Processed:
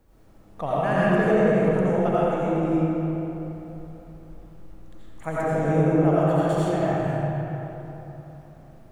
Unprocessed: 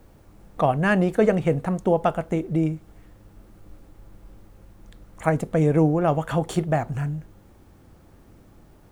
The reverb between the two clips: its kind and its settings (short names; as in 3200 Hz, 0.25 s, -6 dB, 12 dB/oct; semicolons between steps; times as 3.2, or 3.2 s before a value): digital reverb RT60 3.5 s, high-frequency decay 0.6×, pre-delay 45 ms, DRR -9.5 dB; gain -10 dB